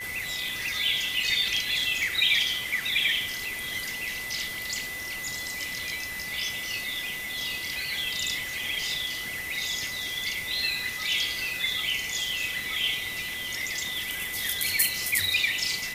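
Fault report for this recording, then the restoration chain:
whistle 2,000 Hz −34 dBFS
0:02.03: click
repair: click removal
notch filter 2,000 Hz, Q 30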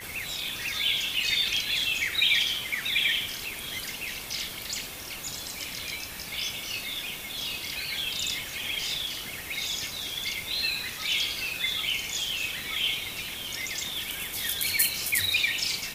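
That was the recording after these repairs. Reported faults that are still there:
none of them is left

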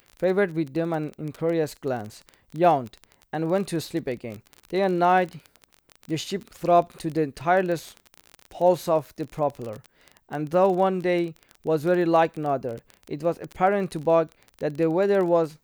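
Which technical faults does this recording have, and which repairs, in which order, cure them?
surface crackle 25 per second −29 dBFS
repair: click removal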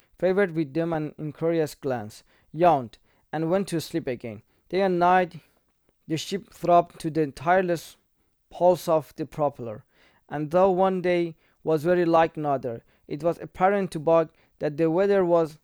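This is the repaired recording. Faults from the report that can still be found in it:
none of them is left

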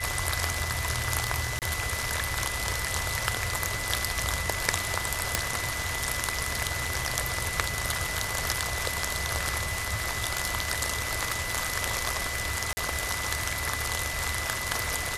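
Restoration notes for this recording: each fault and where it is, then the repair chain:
surface crackle 20 per second −35 dBFS
whistle 2,000 Hz −34 dBFS
0:01.59–0:01.62: drop-out 28 ms
0:05.35: click
0:12.73–0:12.77: drop-out 40 ms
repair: click removal
notch filter 2,000 Hz, Q 30
repair the gap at 0:01.59, 28 ms
repair the gap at 0:12.73, 40 ms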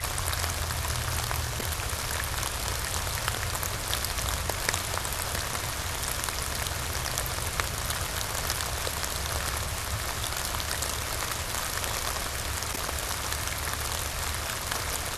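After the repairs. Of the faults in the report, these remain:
none of them is left

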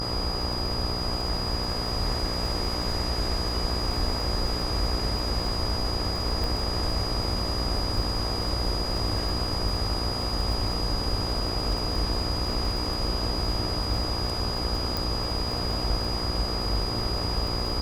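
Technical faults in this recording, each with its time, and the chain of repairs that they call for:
mains buzz 60 Hz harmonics 22 −33 dBFS
surface crackle 39 per second −33 dBFS
whistle 4,900 Hz −31 dBFS
0:06.44: click
0:14.97: click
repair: click removal
hum removal 60 Hz, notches 22
notch filter 4,900 Hz, Q 30

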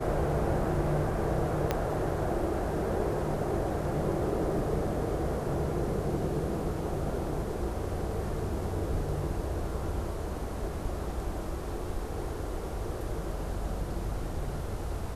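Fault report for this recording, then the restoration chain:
0:01.71: click −13 dBFS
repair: click removal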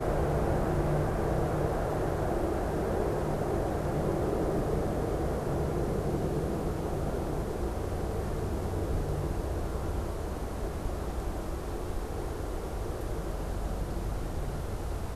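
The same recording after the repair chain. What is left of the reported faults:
0:01.71: click

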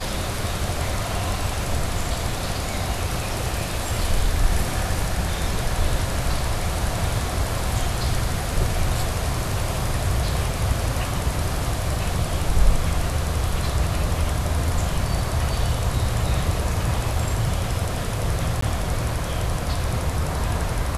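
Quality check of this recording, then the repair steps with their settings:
0:18.61–0:18.62: drop-out 14 ms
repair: repair the gap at 0:18.61, 14 ms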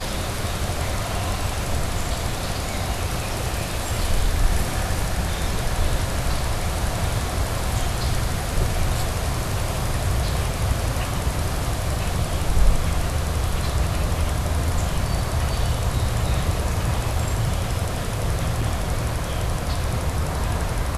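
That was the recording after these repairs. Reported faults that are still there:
none of them is left

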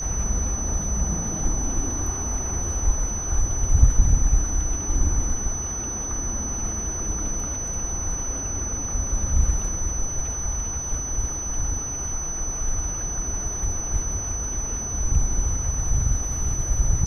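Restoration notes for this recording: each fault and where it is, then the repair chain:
whistle 6,000 Hz −28 dBFS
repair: notch filter 6,000 Hz, Q 30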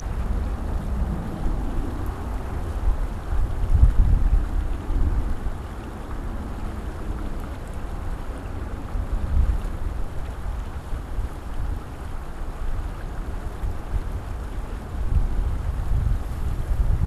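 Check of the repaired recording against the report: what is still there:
none of them is left

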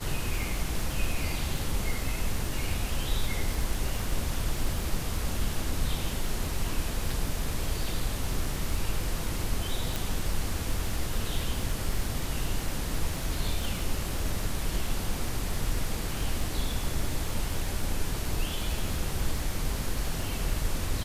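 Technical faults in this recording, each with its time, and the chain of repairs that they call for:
surface crackle 36 per second −33 dBFS
0:09.96: click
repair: click removal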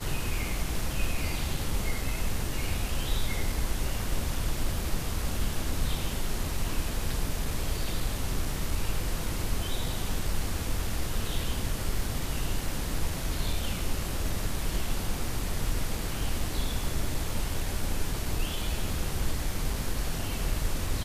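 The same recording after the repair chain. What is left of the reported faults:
none of them is left

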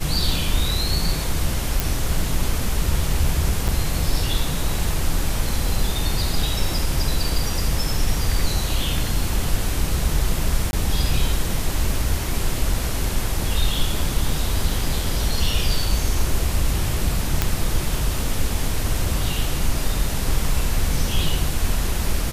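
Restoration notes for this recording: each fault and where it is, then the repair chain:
0:01.80: click
0:03.68–0:03.69: drop-out 6 ms
0:10.71–0:10.73: drop-out 21 ms
0:17.42: click −3 dBFS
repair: click removal
repair the gap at 0:03.68, 6 ms
repair the gap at 0:10.71, 21 ms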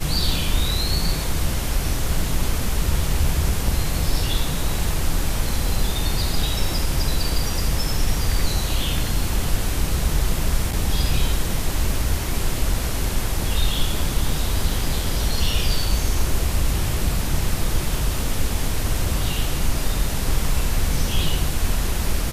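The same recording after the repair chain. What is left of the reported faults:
none of them is left

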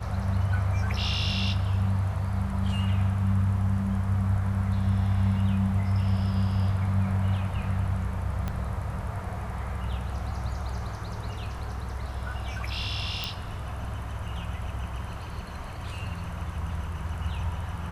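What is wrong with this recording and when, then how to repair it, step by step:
0:08.48: click −18 dBFS
0:13.24: click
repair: click removal

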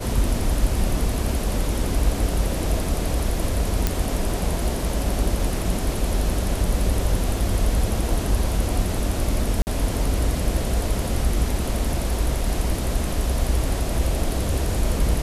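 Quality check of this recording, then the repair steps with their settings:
0:03.87: click
0:09.62–0:09.67: drop-out 49 ms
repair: click removal
repair the gap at 0:09.62, 49 ms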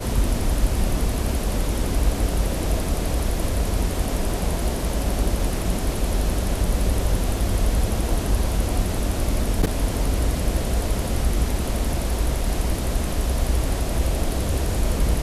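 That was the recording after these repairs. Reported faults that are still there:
none of them is left

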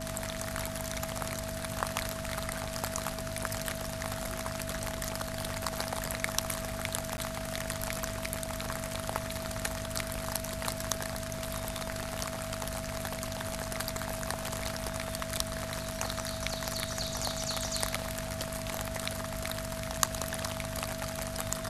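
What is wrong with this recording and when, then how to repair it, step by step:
mains hum 50 Hz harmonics 5 −42 dBFS
whistle 650 Hz −40 dBFS
0:07.17–0:07.18: drop-out 10 ms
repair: hum removal 50 Hz, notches 5
notch filter 650 Hz, Q 30
repair the gap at 0:07.17, 10 ms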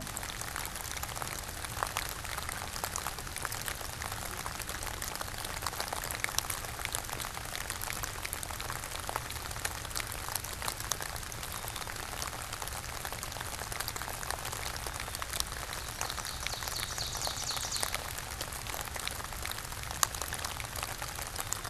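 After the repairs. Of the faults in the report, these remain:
none of them is left

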